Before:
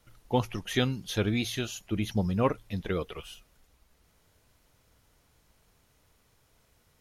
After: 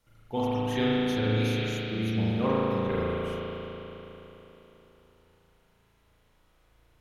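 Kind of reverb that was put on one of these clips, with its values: spring tank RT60 3.7 s, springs 36 ms, chirp 35 ms, DRR -9 dB; trim -7.5 dB

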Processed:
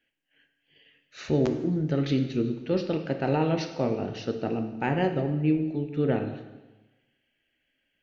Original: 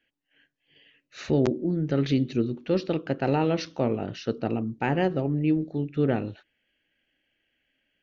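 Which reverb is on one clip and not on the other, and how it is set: plate-style reverb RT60 1.2 s, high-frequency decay 0.95×, DRR 6 dB; trim -2 dB

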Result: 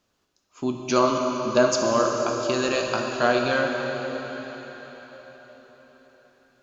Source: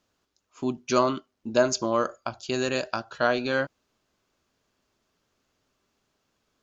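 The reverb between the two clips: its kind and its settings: plate-style reverb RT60 4.9 s, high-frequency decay 0.95×, DRR 1 dB; trim +1.5 dB

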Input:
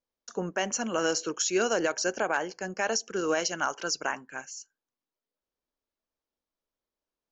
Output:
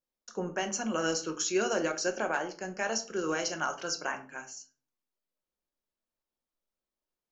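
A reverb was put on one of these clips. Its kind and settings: simulated room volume 260 m³, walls furnished, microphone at 0.96 m; trim -4 dB

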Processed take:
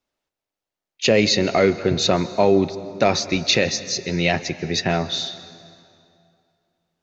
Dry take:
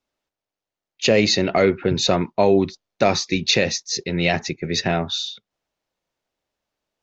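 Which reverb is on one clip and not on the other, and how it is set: plate-style reverb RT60 2.5 s, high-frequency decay 0.75×, pre-delay 120 ms, DRR 14.5 dB

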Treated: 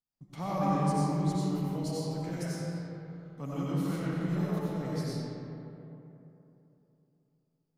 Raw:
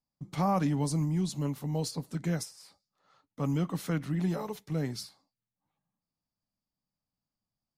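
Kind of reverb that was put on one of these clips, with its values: algorithmic reverb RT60 3.2 s, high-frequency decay 0.45×, pre-delay 50 ms, DRR -8 dB; trim -9 dB

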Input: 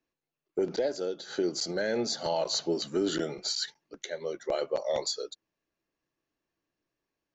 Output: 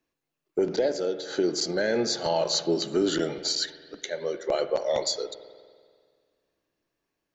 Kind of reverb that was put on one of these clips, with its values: spring tank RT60 1.9 s, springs 48 ms, chirp 80 ms, DRR 11 dB; trim +4 dB

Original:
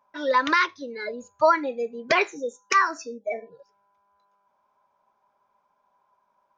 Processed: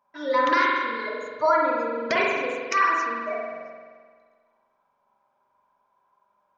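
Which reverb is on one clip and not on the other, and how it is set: spring tank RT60 1.7 s, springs 43 ms, chirp 25 ms, DRR -3 dB; trim -4.5 dB

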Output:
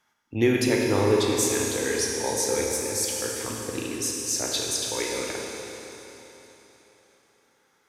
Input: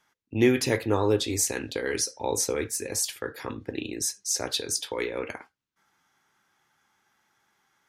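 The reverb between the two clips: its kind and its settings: Schroeder reverb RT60 3.7 s, combs from 27 ms, DRR -1 dB; trim -1 dB

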